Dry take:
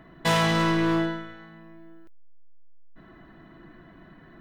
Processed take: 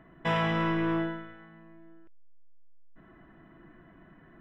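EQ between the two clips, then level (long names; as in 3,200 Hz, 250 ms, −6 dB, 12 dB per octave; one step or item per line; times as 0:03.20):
Savitzky-Golay smoothing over 25 samples
−5.0 dB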